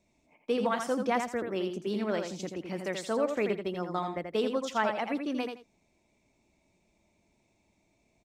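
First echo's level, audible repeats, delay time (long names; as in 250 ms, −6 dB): −6.0 dB, 2, 83 ms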